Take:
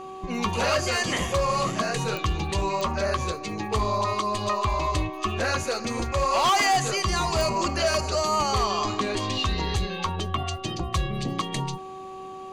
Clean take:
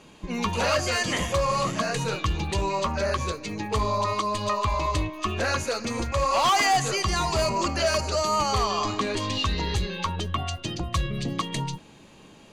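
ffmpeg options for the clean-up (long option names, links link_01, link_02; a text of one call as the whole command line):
ffmpeg -i in.wav -af "adeclick=threshold=4,bandreject=frequency=379.5:width_type=h:width=4,bandreject=frequency=759:width_type=h:width=4,bandreject=frequency=1138.5:width_type=h:width=4" out.wav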